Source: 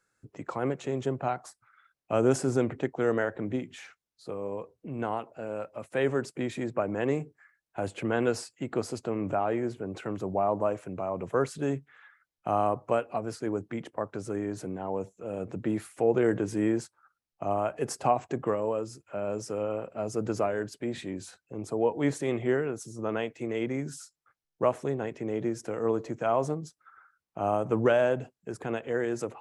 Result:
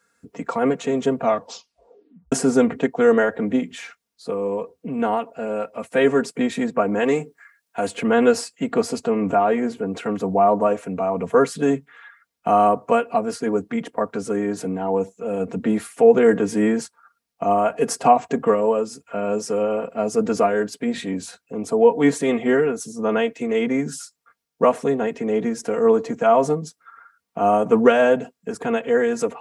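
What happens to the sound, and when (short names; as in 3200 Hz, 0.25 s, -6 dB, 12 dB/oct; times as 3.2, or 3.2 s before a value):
1.18 tape stop 1.14 s
6.99–7.95 tilt +1.5 dB/oct
whole clip: HPF 77 Hz; comb 4.3 ms, depth 88%; gain +7.5 dB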